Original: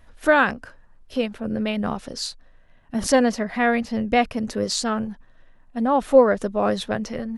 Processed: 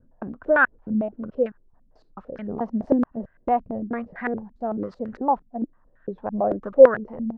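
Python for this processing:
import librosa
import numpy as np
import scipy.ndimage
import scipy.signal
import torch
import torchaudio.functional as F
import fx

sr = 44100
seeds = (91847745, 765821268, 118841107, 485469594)

y = fx.block_reorder(x, sr, ms=217.0, group=4)
y = fx.filter_held_lowpass(y, sr, hz=8.9, low_hz=230.0, high_hz=1600.0)
y = y * librosa.db_to_amplitude(-8.0)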